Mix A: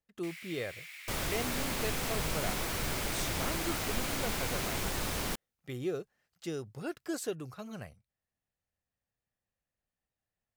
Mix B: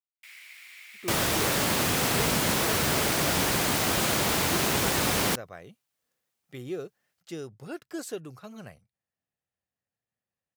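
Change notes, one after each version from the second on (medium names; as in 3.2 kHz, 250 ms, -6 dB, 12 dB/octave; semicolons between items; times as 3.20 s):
speech: entry +0.85 s; second sound +10.0 dB; master: add high-pass 100 Hz 12 dB/octave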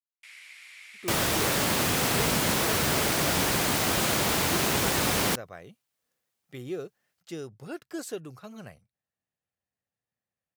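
first sound: add low-pass 11 kHz 24 dB/octave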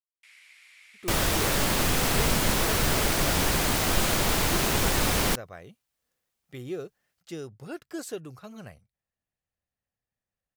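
first sound -6.0 dB; master: remove high-pass 100 Hz 12 dB/octave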